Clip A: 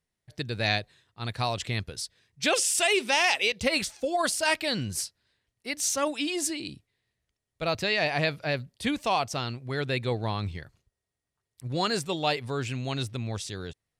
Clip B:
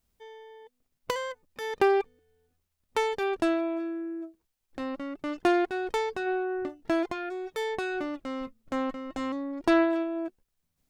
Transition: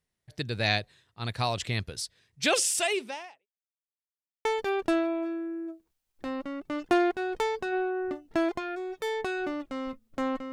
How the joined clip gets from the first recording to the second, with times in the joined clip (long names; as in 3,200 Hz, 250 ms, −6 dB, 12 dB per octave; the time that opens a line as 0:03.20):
clip A
0:02.60–0:03.47: fade out and dull
0:03.47–0:04.45: silence
0:04.45: continue with clip B from 0:02.99